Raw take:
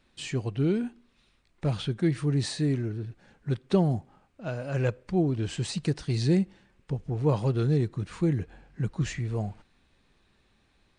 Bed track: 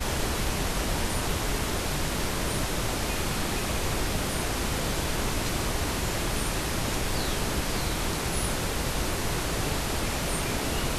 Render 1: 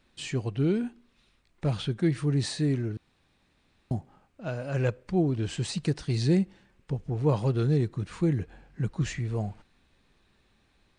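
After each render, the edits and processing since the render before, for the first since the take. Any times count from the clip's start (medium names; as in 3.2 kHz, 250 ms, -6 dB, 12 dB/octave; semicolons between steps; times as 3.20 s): 2.97–3.91 s: room tone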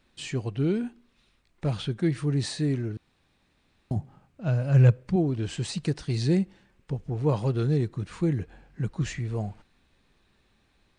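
3.96–5.16 s: peaking EQ 130 Hz +12 dB 1 oct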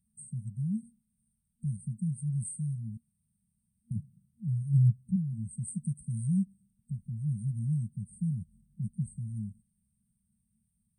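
FFT band-reject 230–8100 Hz; frequency weighting D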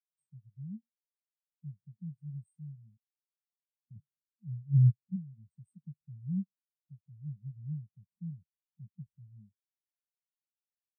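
in parallel at +1 dB: compression, threshold -40 dBFS, peak gain reduction 18.5 dB; on the sum: spectral contrast expander 2.5:1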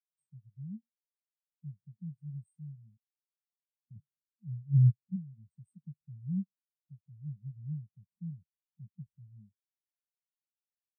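no audible change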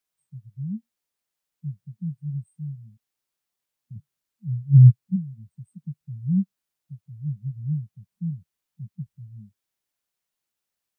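trim +11.5 dB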